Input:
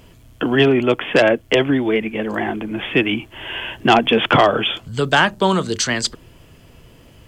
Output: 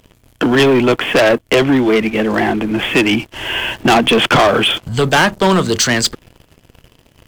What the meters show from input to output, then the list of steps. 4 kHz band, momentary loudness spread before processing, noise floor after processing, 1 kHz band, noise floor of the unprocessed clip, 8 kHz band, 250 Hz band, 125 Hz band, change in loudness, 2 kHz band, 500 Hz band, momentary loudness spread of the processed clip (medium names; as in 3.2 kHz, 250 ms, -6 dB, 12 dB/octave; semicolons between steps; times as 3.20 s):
+5.0 dB, 11 LU, -54 dBFS, +3.0 dB, -47 dBFS, +7.0 dB, +5.0 dB, +4.5 dB, +4.0 dB, +4.0 dB, +3.5 dB, 7 LU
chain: waveshaping leveller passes 3; trim -3 dB